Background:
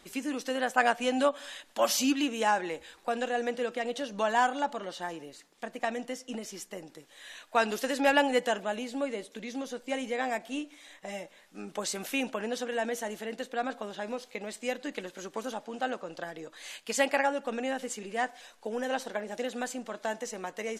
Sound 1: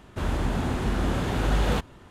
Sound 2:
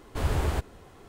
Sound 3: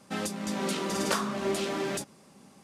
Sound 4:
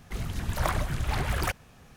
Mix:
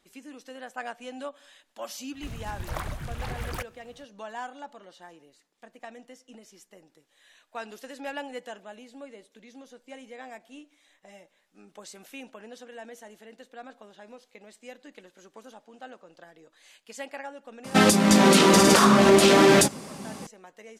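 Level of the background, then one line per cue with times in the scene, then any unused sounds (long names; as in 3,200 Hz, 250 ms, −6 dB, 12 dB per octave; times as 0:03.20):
background −11.5 dB
0:02.11: mix in 4 −6 dB, fades 0.05 s
0:17.64: mix in 3 −6 dB + boost into a limiter +22 dB
not used: 1, 2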